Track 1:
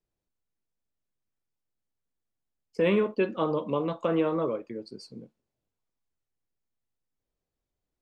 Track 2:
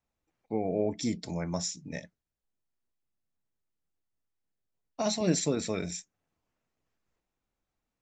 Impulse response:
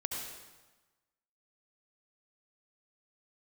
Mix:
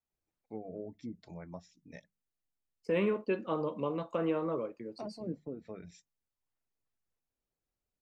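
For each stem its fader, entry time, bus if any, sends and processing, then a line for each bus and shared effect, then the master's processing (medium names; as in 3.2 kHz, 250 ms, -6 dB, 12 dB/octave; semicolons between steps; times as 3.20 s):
-6.0 dB, 0.10 s, no send, band-stop 3.4 kHz, Q 8.7
-11.0 dB, 0.00 s, no send, hum notches 50/100/150/200 Hz; low-pass that closes with the level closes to 580 Hz, closed at -25 dBFS; reverb removal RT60 0.79 s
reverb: none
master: none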